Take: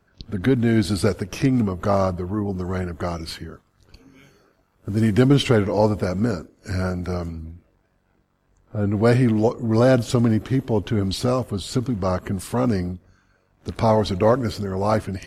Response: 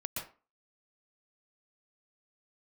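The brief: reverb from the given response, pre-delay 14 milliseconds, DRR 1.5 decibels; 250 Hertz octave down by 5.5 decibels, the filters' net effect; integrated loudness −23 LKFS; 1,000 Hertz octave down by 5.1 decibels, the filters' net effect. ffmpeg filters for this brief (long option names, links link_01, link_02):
-filter_complex "[0:a]equalizer=frequency=250:width_type=o:gain=-6.5,equalizer=frequency=1000:width_type=o:gain=-6.5,asplit=2[link_01][link_02];[1:a]atrim=start_sample=2205,adelay=14[link_03];[link_02][link_03]afir=irnorm=-1:irlink=0,volume=-3dB[link_04];[link_01][link_04]amix=inputs=2:normalize=0,volume=-1dB"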